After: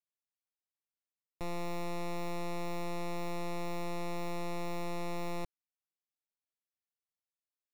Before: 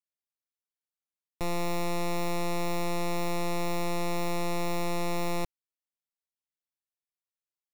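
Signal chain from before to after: high shelf 5200 Hz -6 dB; gain -7 dB

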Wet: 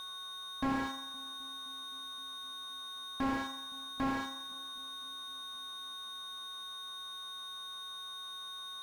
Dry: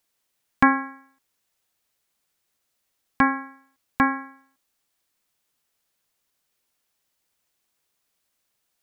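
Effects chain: low shelf 420 Hz -8.5 dB; de-hum 75.31 Hz, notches 34; reverse; compressor, threshold -27 dBFS, peak gain reduction 13 dB; reverse; whine 3700 Hz -40 dBFS; in parallel at -8.5 dB: sample-and-hold 17×; on the sum: darkening echo 0.259 s, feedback 80%, low-pass 820 Hz, level -22.5 dB; slew limiter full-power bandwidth 18 Hz; gain +1.5 dB

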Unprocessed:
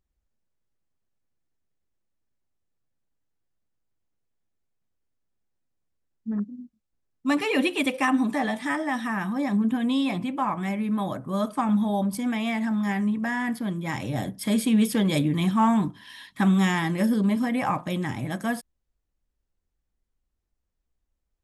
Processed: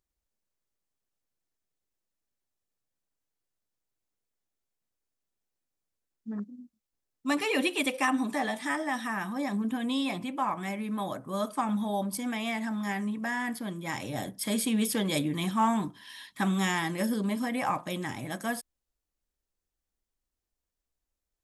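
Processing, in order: tone controls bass -7 dB, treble +5 dB; gain -3 dB

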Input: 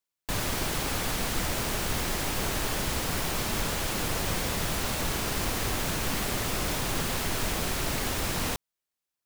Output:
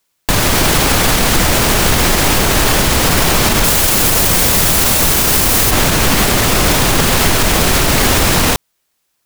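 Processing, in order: 3.64–5.71 high shelf 6700 Hz +10 dB; maximiser +22 dB; gain -1 dB

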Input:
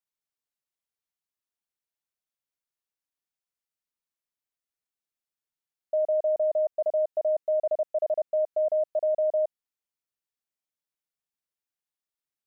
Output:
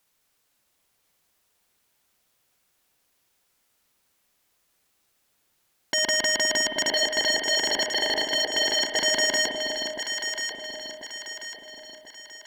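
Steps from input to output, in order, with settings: block floating point 7-bit; 6.89–8.96 tremolo triangle 12 Hz, depth 40%; sine folder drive 17 dB, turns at -20.5 dBFS; echo with dull and thin repeats by turns 0.519 s, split 830 Hz, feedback 66%, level -3 dB; spring tank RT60 1.4 s, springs 49/53 ms, chirp 70 ms, DRR 7 dB

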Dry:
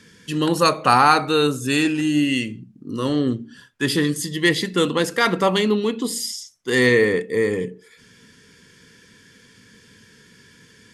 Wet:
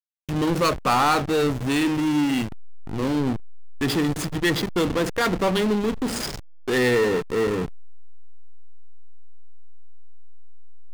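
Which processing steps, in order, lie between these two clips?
backlash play -19 dBFS; power-law curve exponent 0.5; gain -9 dB

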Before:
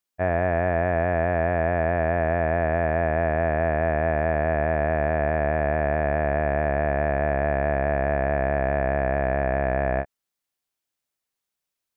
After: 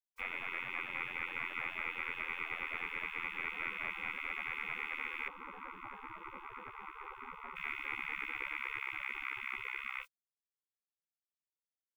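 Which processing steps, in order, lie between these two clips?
limiter -21.5 dBFS, peak gain reduction 10 dB; spectral gate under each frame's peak -30 dB weak; 5.28–7.56 resonant high shelf 1500 Hz -11.5 dB, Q 1.5; gain +18 dB

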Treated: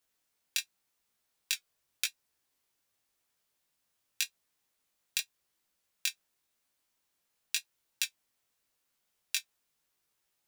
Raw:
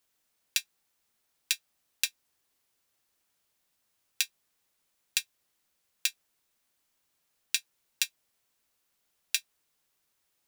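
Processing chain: 1.54–2.05 frequency shift -150 Hz; chorus 0.89 Hz, delay 15 ms, depth 7.3 ms

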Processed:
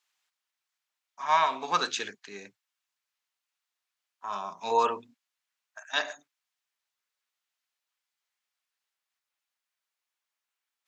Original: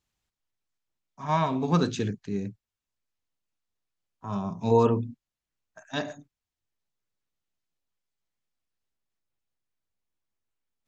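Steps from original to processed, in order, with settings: HPF 1100 Hz 12 dB/oct; high shelf 4900 Hz -5 dB; gain +8 dB

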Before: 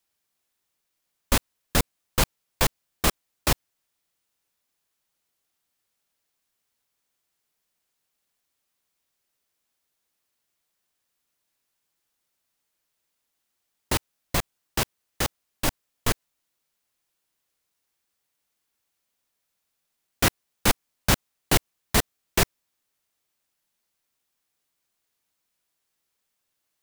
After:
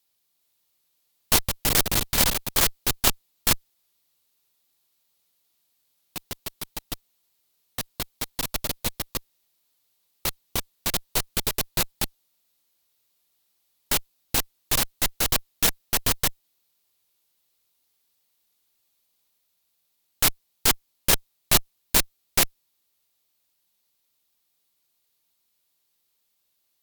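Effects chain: echoes that change speed 0.413 s, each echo +6 st, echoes 3; fifteen-band EQ 1600 Hz -4 dB, 4000 Hz +6 dB, 16000 Hz +10 dB; added harmonics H 3 -17 dB, 5 -17 dB, 7 -9 dB, 8 -13 dB, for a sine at -2.5 dBFS; gain -1 dB

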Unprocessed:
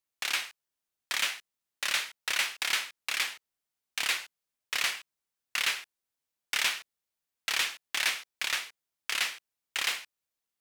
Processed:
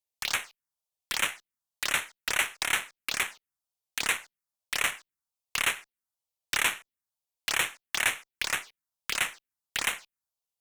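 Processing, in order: added harmonics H 7 -21 dB, 8 -39 dB, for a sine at -14 dBFS; envelope phaser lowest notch 250 Hz, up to 4800 Hz, full sweep at -29.5 dBFS; gain +6.5 dB

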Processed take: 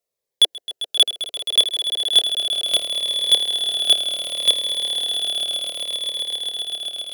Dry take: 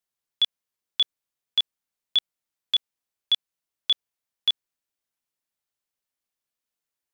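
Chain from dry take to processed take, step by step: band shelf 530 Hz +14 dB 1.1 oct; sample leveller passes 2; swelling echo 0.132 s, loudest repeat 8, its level -11 dB; cascading phaser falling 0.68 Hz; gain +6.5 dB

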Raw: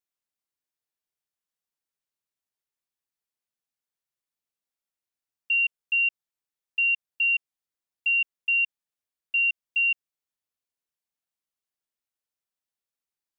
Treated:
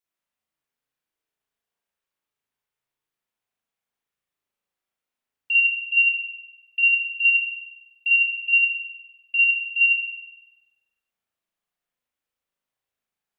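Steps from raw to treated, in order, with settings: notches 50/100/150/200/250/300/350 Hz; spring tank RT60 1 s, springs 37 ms, chirp 65 ms, DRR -6.5 dB

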